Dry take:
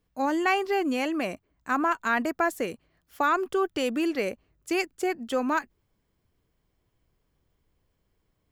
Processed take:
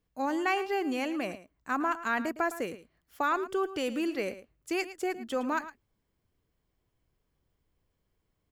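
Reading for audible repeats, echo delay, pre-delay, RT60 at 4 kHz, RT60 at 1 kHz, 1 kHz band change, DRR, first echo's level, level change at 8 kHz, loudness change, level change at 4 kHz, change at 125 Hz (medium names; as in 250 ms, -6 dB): 1, 110 ms, no reverb, no reverb, no reverb, -4.5 dB, no reverb, -14.0 dB, -4.5 dB, -4.5 dB, -4.5 dB, -4.5 dB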